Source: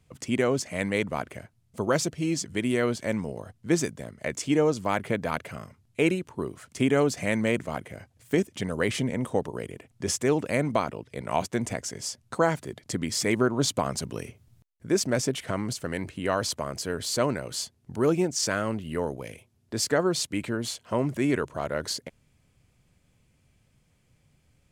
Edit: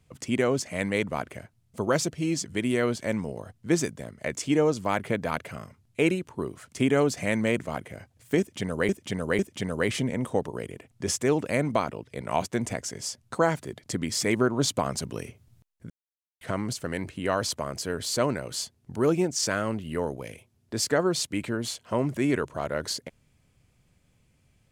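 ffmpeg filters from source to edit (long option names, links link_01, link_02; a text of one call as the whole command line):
ffmpeg -i in.wav -filter_complex "[0:a]asplit=5[link_01][link_02][link_03][link_04][link_05];[link_01]atrim=end=8.892[link_06];[link_02]atrim=start=8.388:end=8.892[link_07];[link_03]atrim=start=8.388:end=14.9,asetpts=PTS-STARTPTS,afade=type=out:start_time=6.508:duration=0.004:curve=hsin[link_08];[link_04]atrim=start=14.9:end=15.41,asetpts=PTS-STARTPTS,volume=0[link_09];[link_05]atrim=start=15.41,asetpts=PTS-STARTPTS,afade=type=in:duration=0.004:curve=hsin[link_10];[link_06][link_07]acrossfade=duration=0.004:curve1=hsin:curve2=hsin[link_11];[link_08][link_09][link_10]concat=n=3:v=0:a=1[link_12];[link_11][link_12]acrossfade=duration=0.004:curve1=hsin:curve2=hsin" out.wav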